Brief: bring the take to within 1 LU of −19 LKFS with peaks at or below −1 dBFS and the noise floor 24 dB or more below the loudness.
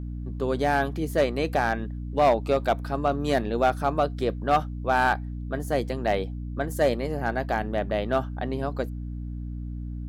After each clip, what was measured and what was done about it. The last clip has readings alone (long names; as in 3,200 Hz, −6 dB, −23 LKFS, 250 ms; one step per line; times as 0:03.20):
share of clipped samples 0.4%; peaks flattened at −13.5 dBFS; mains hum 60 Hz; hum harmonics up to 300 Hz; level of the hum −31 dBFS; integrated loudness −26.5 LKFS; sample peak −13.5 dBFS; target loudness −19.0 LKFS
→ clipped peaks rebuilt −13.5 dBFS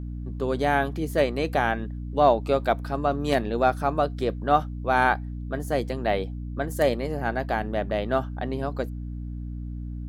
share of clipped samples 0.0%; mains hum 60 Hz; hum harmonics up to 300 Hz; level of the hum −31 dBFS
→ mains-hum notches 60/120/180/240/300 Hz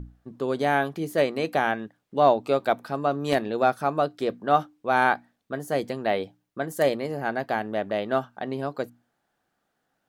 mains hum none found; integrated loudness −26.0 LKFS; sample peak −6.5 dBFS; target loudness −19.0 LKFS
→ level +7 dB
brickwall limiter −1 dBFS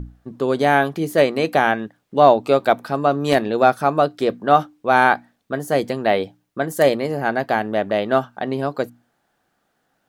integrated loudness −19.0 LKFS; sample peak −1.0 dBFS; background noise floor −70 dBFS